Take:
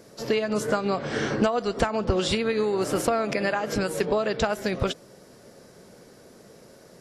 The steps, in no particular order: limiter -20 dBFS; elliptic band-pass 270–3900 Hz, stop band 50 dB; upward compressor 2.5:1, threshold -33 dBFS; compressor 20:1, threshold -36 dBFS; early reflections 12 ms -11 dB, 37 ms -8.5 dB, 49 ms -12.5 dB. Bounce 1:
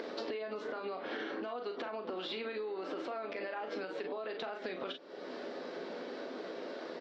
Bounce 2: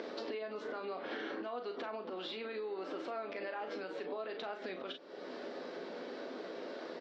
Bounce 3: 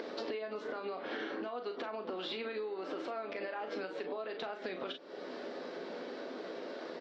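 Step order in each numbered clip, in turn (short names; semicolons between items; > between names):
elliptic band-pass > upward compressor > early reflections > limiter > compressor; upward compressor > limiter > early reflections > compressor > elliptic band-pass; elliptic band-pass > limiter > early reflections > upward compressor > compressor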